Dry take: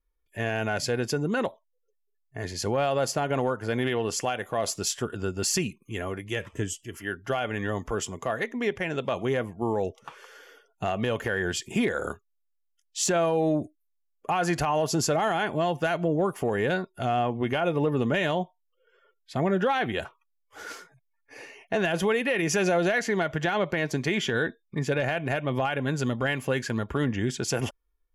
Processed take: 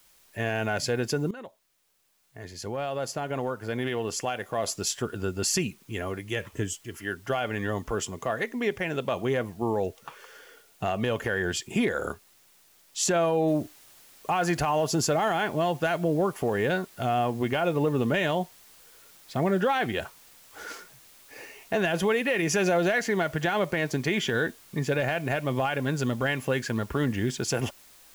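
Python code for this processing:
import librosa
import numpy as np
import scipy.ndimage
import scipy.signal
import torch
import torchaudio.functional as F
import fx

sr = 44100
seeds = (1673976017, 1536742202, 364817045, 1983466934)

y = fx.noise_floor_step(x, sr, seeds[0], at_s=13.48, before_db=-60, after_db=-54, tilt_db=0.0)
y = fx.edit(y, sr, fx.fade_in_from(start_s=1.31, length_s=3.82, floor_db=-16.0), tone=tone)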